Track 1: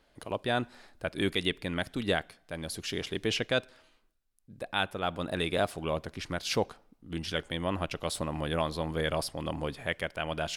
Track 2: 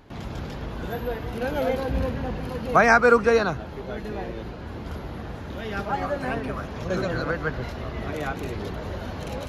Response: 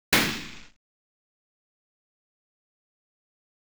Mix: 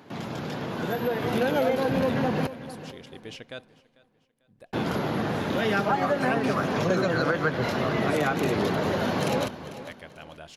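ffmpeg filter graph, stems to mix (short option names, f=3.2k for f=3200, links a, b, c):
-filter_complex "[0:a]volume=-18.5dB,asplit=2[a][b];[b]volume=-22.5dB[c];[1:a]highpass=f=130:w=0.5412,highpass=f=130:w=1.3066,acompressor=threshold=-31dB:ratio=6,volume=3dB,asplit=3[d][e][f];[d]atrim=end=2.47,asetpts=PTS-STARTPTS,afade=t=out:st=2.466:d=0.004:c=hsin[g];[e]atrim=start=2.47:end=4.73,asetpts=PTS-STARTPTS,volume=0[h];[f]atrim=start=4.73,asetpts=PTS-STARTPTS,afade=t=in:d=0.004:c=hsin[i];[g][h][i]concat=n=3:v=0:a=1,asplit=2[j][k];[k]volume=-14.5dB[l];[c][l]amix=inputs=2:normalize=0,aecho=0:1:445|890|1335|1780|2225:1|0.33|0.109|0.0359|0.0119[m];[a][j][m]amix=inputs=3:normalize=0,dynaudnorm=f=180:g=11:m=7dB"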